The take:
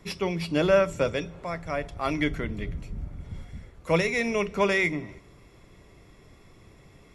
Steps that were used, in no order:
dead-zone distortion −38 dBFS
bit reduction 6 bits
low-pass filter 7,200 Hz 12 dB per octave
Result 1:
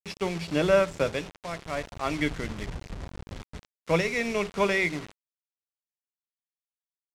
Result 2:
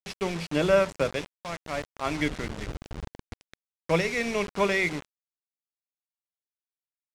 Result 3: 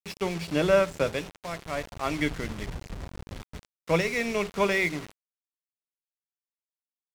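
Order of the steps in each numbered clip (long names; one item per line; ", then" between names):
bit reduction, then dead-zone distortion, then low-pass filter
dead-zone distortion, then bit reduction, then low-pass filter
bit reduction, then low-pass filter, then dead-zone distortion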